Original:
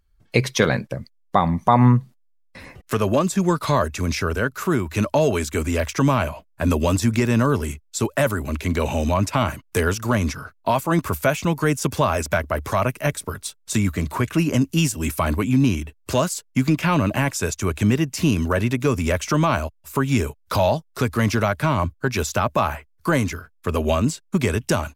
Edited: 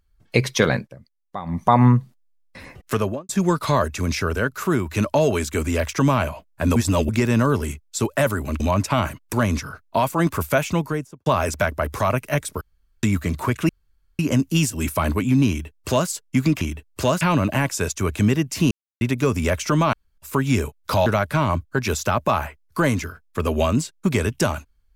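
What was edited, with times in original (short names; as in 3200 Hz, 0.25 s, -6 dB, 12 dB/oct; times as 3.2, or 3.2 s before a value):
0.76–1.59 dip -13.5 dB, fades 0.14 s
2.95–3.29 studio fade out
6.76–7.09 reverse
8.6–9.03 cut
9.76–10.05 cut
11.41–11.98 studio fade out
13.33–13.75 room tone
14.41 insert room tone 0.50 s
15.71–16.31 copy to 16.83
18.33–18.63 mute
19.55–19.8 room tone
20.68–21.35 cut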